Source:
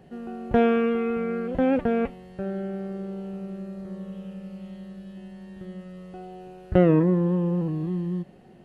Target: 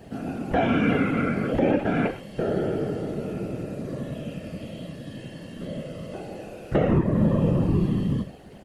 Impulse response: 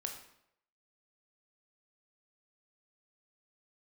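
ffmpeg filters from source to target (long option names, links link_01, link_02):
-filter_complex "[0:a]aecho=1:1:7.3:0.6,asplit=2[link_01][link_02];[1:a]atrim=start_sample=2205,atrim=end_sample=6174,highshelf=frequency=2400:gain=11[link_03];[link_02][link_03]afir=irnorm=-1:irlink=0,volume=4.5dB[link_04];[link_01][link_04]amix=inputs=2:normalize=0,afftfilt=real='hypot(re,im)*cos(2*PI*random(0))':imag='hypot(re,im)*sin(2*PI*random(1))':win_size=512:overlap=0.75,alimiter=limit=-14.5dB:level=0:latency=1:release=331,volume=3dB"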